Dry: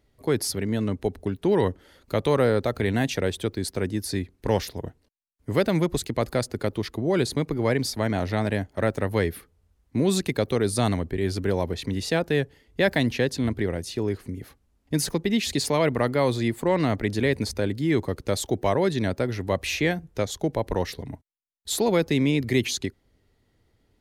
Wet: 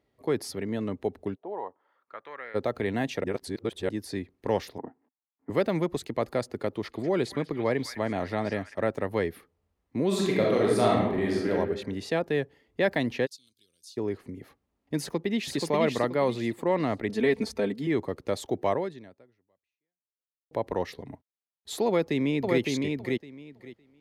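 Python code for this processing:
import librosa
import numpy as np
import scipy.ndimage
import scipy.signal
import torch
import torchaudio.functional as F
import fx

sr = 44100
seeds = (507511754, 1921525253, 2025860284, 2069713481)

y = fx.bandpass_q(x, sr, hz=fx.line((1.34, 600.0), (2.54, 2100.0)), q=3.6, at=(1.34, 2.54), fade=0.02)
y = fx.cabinet(y, sr, low_hz=210.0, low_slope=12, high_hz=2000.0, hz=(260.0, 550.0, 830.0), db=(9, -8, 8), at=(4.78, 5.5))
y = fx.echo_stepped(y, sr, ms=203, hz=1700.0, octaves=0.7, feedback_pct=70, wet_db=-7, at=(6.82, 8.73), fade=0.02)
y = fx.reverb_throw(y, sr, start_s=10.07, length_s=1.44, rt60_s=0.95, drr_db=-4.0)
y = fx.cheby2_highpass(y, sr, hz=2100.0, order=4, stop_db=40, at=(13.25, 13.96), fade=0.02)
y = fx.echo_throw(y, sr, start_s=14.99, length_s=0.57, ms=480, feedback_pct=30, wet_db=-3.5)
y = fx.comb(y, sr, ms=4.5, depth=0.86, at=(17.09, 17.87))
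y = fx.echo_throw(y, sr, start_s=21.87, length_s=0.74, ms=560, feedback_pct=15, wet_db=-2.5)
y = fx.edit(y, sr, fx.reverse_span(start_s=3.24, length_s=0.65),
    fx.fade_out_span(start_s=18.73, length_s=1.78, curve='exp'), tone=tone)
y = fx.highpass(y, sr, hz=280.0, slope=6)
y = fx.high_shelf(y, sr, hz=3300.0, db=-12.0)
y = fx.notch(y, sr, hz=1500.0, q=13.0)
y = F.gain(torch.from_numpy(y), -1.0).numpy()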